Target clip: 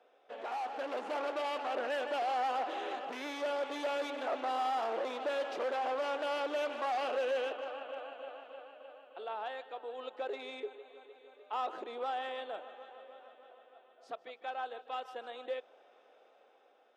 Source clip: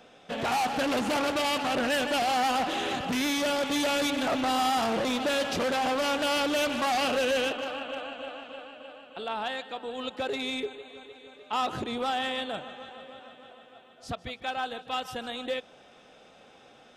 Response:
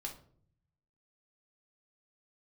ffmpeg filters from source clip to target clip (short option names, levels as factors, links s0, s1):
-af "highpass=f=390:w=0.5412,highpass=f=390:w=1.3066,dynaudnorm=f=220:g=9:m=1.68,lowpass=f=1000:p=1,volume=0.376"